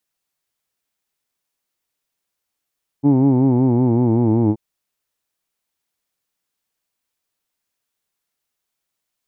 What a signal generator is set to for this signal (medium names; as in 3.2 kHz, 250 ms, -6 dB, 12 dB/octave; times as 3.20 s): formant-synthesis vowel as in who'd, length 1.53 s, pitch 138 Hz, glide -4 st